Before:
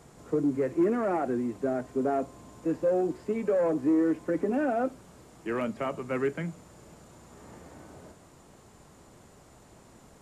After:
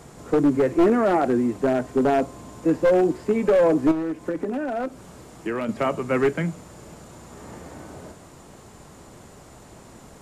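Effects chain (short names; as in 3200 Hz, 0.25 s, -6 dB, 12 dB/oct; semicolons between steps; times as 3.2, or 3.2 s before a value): one-sided fold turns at -22 dBFS; 3.91–5.69 compressor 10:1, threshold -32 dBFS, peak gain reduction 10.5 dB; gain +8.5 dB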